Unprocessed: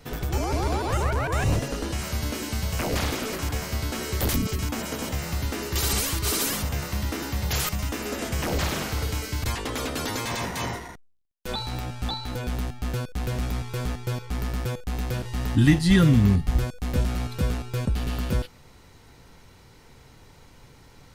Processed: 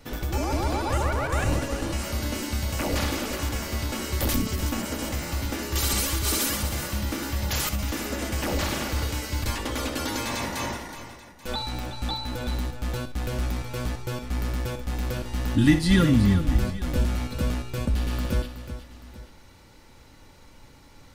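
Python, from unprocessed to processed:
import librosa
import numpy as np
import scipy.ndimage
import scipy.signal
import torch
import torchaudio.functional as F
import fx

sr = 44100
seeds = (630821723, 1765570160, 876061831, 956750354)

y = x + 0.37 * np.pad(x, (int(3.5 * sr / 1000.0), 0))[:len(x)]
y = fx.echo_multitap(y, sr, ms=(63, 372, 834), db=(-12.5, -11.0, -18.5))
y = y * librosa.db_to_amplitude(-1.0)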